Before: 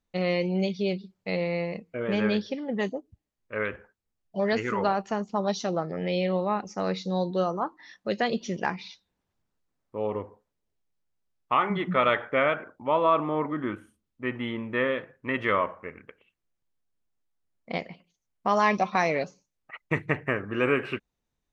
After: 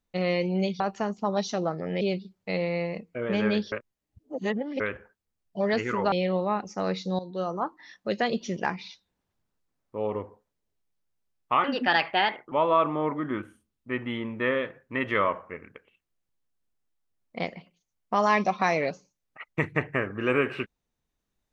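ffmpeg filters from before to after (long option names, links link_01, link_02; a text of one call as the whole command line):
ffmpeg -i in.wav -filter_complex "[0:a]asplit=9[link_01][link_02][link_03][link_04][link_05][link_06][link_07][link_08][link_09];[link_01]atrim=end=0.802[link_10];[link_02]atrim=start=4.908:end=6.122[link_11];[link_03]atrim=start=0.798:end=2.512[link_12];[link_04]atrim=start=2.508:end=3.592,asetpts=PTS-STARTPTS,areverse[link_13];[link_05]atrim=start=3.588:end=4.912[link_14];[link_06]atrim=start=6.118:end=7.19,asetpts=PTS-STARTPTS,afade=type=out:start_time=1.068:duration=0.004:curve=hsin:silence=0.177828[link_15];[link_07]atrim=start=7.19:end=11.644,asetpts=PTS-STARTPTS,afade=type=in:duration=0.44:silence=0.177828[link_16];[link_08]atrim=start=11.64:end=12.85,asetpts=PTS-STARTPTS,asetrate=60858,aresample=44100,atrim=end_sample=38667,asetpts=PTS-STARTPTS[link_17];[link_09]atrim=start=12.846[link_18];[link_10][link_11]acrossfade=duration=0.004:curve1=hsin:curve2=hsin[link_19];[link_19][link_12]acrossfade=duration=0.004:curve1=hsin:curve2=hsin[link_20];[link_20][link_13]acrossfade=duration=0.004:curve1=hsin:curve2=hsin[link_21];[link_21][link_14]acrossfade=duration=0.004:curve1=hsin:curve2=hsin[link_22];[link_15][link_16]concat=n=2:v=0:a=1[link_23];[link_22][link_23]acrossfade=duration=0.004:curve1=hsin:curve2=hsin[link_24];[link_24][link_17]acrossfade=duration=0.004:curve1=hsin:curve2=hsin[link_25];[link_25][link_18]acrossfade=duration=0.004:curve1=hsin:curve2=hsin" out.wav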